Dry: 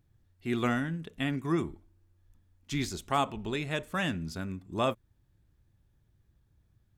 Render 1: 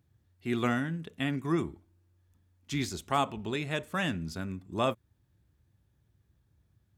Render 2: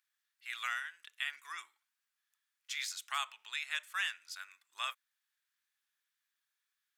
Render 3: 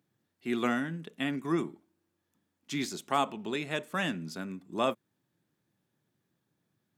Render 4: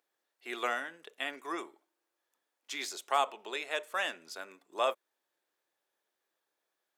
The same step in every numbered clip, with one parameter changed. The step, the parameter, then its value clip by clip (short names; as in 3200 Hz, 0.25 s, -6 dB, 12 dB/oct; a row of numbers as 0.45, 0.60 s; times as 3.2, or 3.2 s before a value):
HPF, cutoff: 55, 1400, 170, 470 Hz